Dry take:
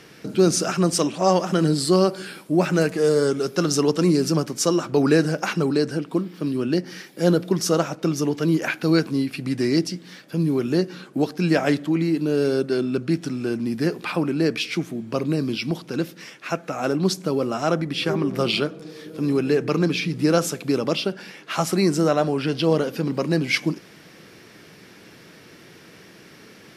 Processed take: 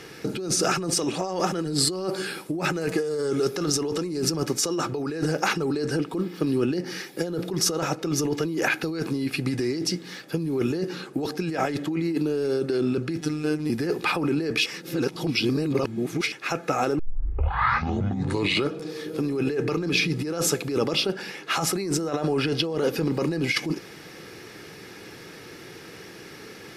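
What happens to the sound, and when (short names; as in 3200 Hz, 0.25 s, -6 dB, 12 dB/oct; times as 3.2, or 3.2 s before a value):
13.21–13.7 robotiser 152 Hz
14.66–16.32 reverse
16.99 tape start 1.74 s
whole clip: negative-ratio compressor -25 dBFS, ratio -1; notch 3100 Hz, Q 19; comb 2.4 ms, depth 35%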